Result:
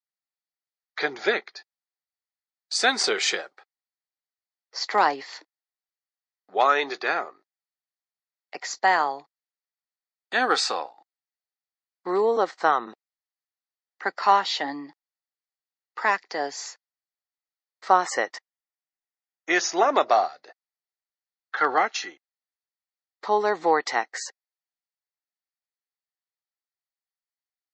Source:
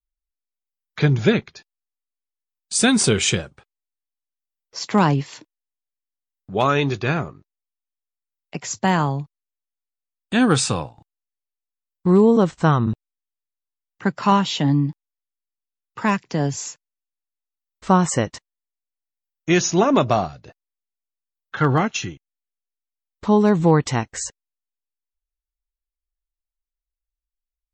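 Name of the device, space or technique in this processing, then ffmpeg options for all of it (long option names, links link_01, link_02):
phone speaker on a table: -filter_complex "[0:a]highpass=frequency=380:width=0.5412,highpass=frequency=380:width=1.3066,equalizer=frequency=770:width_type=q:width=4:gain=8,equalizer=frequency=1300:width_type=q:width=4:gain=5,equalizer=frequency=1900:width_type=q:width=4:gain=10,equalizer=frequency=2800:width_type=q:width=4:gain=-4,equalizer=frequency=4500:width_type=q:width=4:gain=9,lowpass=frequency=6600:width=0.5412,lowpass=frequency=6600:width=1.3066,asettb=1/sr,asplit=3[link_01][link_02][link_03];[link_01]atrim=end=18.324[link_04];[link_02]atrim=start=18.32:end=19.89,asetpts=PTS-STARTPTS,afade=type=in:duration=0.004:curve=qsin,afade=type=out:start_time=1.566:duration=0.004:curve=qsin,bandreject=frequency=4200:width=5.7[link_05];[link_03]atrim=start=19.886[link_06];[link_04][link_05]acrossfade=duration=0.004:curve1=hsin:curve2=qsin[link_07];[link_07][link_06]acrossfade=duration=0.004:curve1=qsin:curve2=hsin,volume=-4.5dB"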